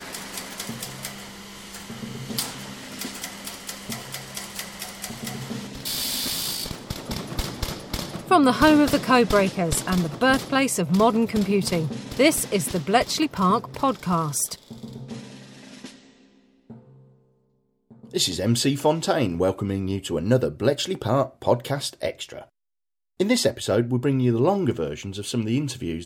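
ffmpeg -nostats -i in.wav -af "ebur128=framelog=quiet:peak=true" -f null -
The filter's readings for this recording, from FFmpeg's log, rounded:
Integrated loudness:
  I:         -23.7 LUFS
  Threshold: -34.6 LUFS
Loudness range:
  LRA:        12.4 LU
  Threshold: -44.5 LUFS
  LRA low:   -33.0 LUFS
  LRA high:  -20.5 LUFS
True peak:
  Peak:       -5.2 dBFS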